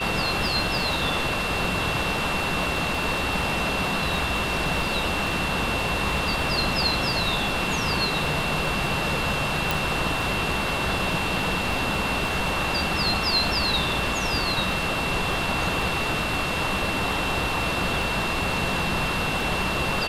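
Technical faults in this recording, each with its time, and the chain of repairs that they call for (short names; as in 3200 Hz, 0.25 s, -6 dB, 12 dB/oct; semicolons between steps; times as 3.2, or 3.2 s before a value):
crackle 34/s -31 dBFS
tone 2700 Hz -29 dBFS
9.71 pop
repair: de-click; notch 2700 Hz, Q 30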